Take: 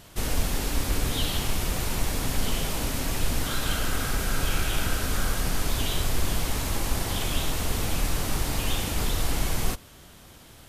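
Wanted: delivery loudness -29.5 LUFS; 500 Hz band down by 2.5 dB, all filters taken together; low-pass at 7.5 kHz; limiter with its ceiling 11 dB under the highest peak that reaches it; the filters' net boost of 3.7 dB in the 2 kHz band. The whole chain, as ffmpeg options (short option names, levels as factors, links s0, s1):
-af "lowpass=7500,equalizer=f=500:t=o:g=-3.5,equalizer=f=2000:t=o:g=5,volume=1.58,alimiter=limit=0.112:level=0:latency=1"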